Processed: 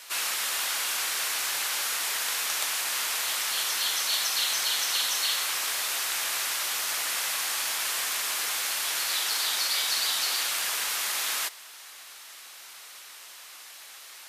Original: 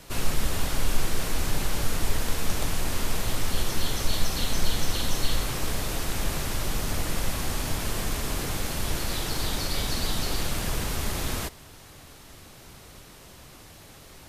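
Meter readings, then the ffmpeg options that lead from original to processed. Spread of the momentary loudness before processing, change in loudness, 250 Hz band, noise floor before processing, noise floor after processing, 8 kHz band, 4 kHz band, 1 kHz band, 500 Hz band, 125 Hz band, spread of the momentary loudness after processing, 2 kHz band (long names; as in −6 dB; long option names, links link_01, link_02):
19 LU, +3.5 dB, −21.5 dB, −48 dBFS, −47 dBFS, +6.0 dB, +6.0 dB, +0.5 dB, −10.0 dB, below −35 dB, 19 LU, +5.0 dB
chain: -af "highpass=1300,volume=6dB"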